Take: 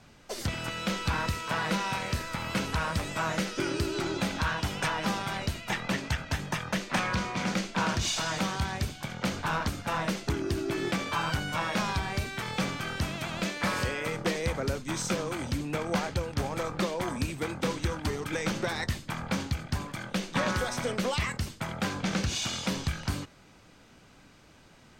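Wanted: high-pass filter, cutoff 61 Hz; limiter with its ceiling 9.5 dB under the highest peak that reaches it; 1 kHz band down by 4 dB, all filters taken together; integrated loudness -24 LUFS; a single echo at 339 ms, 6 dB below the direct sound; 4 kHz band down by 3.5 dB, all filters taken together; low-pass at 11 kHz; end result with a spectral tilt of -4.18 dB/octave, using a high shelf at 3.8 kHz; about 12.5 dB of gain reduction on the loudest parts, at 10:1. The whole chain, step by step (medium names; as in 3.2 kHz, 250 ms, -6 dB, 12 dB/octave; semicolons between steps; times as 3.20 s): high-pass 61 Hz; low-pass 11 kHz; peaking EQ 1 kHz -5 dB; treble shelf 3.8 kHz +3.5 dB; peaking EQ 4 kHz -6.5 dB; compression 10:1, threshold -39 dBFS; peak limiter -35 dBFS; delay 339 ms -6 dB; trim +20 dB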